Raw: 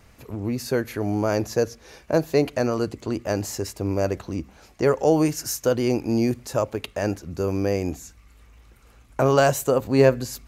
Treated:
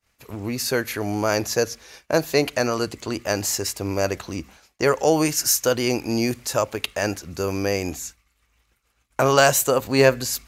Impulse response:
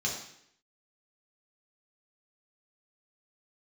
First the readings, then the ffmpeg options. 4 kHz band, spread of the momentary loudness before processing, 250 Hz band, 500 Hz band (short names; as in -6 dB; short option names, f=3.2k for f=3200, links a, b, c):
+9.0 dB, 11 LU, -1.5 dB, 0.0 dB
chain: -af "agate=range=-33dB:threshold=-40dB:ratio=3:detection=peak,tiltshelf=f=940:g=-6,volume=3.5dB"